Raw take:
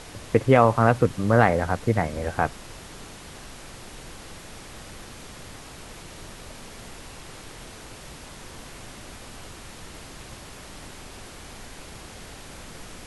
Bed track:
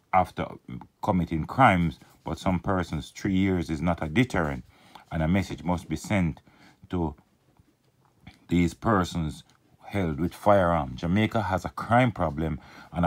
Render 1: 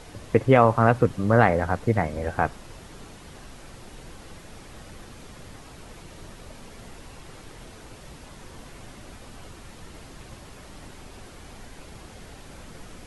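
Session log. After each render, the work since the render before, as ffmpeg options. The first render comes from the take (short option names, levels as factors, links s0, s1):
-af "afftdn=nr=6:nf=-43"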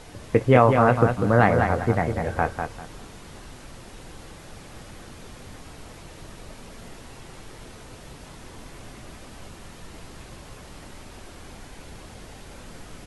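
-filter_complex "[0:a]asplit=2[s0][s1];[s1]adelay=24,volume=0.224[s2];[s0][s2]amix=inputs=2:normalize=0,aecho=1:1:197|394|591:0.501|0.125|0.0313"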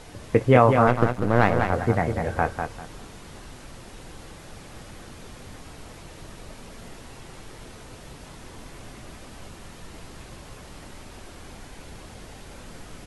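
-filter_complex "[0:a]asettb=1/sr,asplit=3[s0][s1][s2];[s0]atrim=end=0.874[s3];[s1]atrim=start=0.87:end=1.73,asetpts=PTS-STARTPTS,afade=t=in:d=0.004:c=qsin,afade=t=out:st=0.856:d=0.004:c=qsin,aeval=exprs='if(lt(val(0),0),0.251*val(0),val(0))':c=same[s4];[s2]atrim=start=1.726[s5];[s3][s4]acrossfade=d=0.004:c1=hsin:c2=qsin[s6];[s6][s5]acrossfade=d=0.004:c1=qsin:c2=hsin"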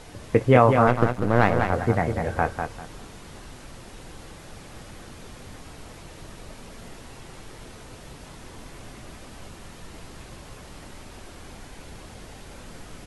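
-af anull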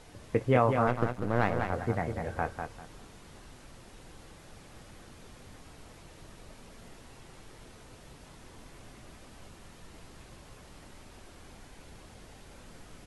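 -af "volume=0.376"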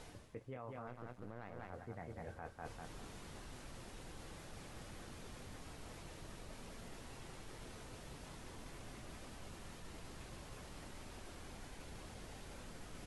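-af "alimiter=limit=0.0891:level=0:latency=1:release=185,areverse,acompressor=threshold=0.00501:ratio=6,areverse"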